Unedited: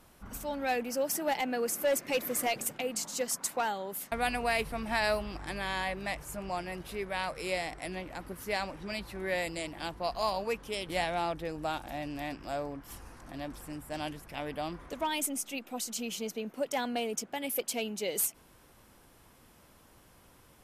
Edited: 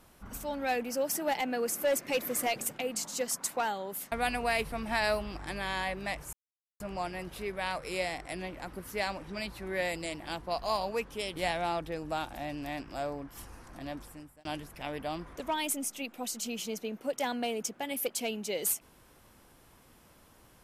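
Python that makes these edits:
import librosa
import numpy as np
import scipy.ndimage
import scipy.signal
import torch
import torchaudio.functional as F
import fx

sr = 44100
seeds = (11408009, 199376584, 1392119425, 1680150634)

y = fx.edit(x, sr, fx.insert_silence(at_s=6.33, length_s=0.47),
    fx.fade_out_span(start_s=13.46, length_s=0.52), tone=tone)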